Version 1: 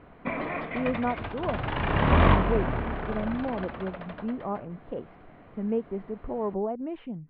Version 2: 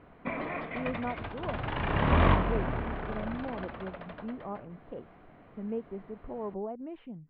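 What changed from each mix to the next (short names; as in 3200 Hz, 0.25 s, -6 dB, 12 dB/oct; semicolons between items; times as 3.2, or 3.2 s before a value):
speech -7.0 dB; background -3.5 dB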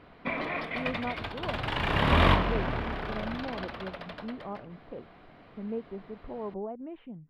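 background: remove air absorption 470 m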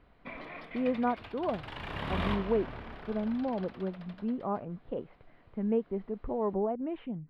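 speech +6.0 dB; background -11.5 dB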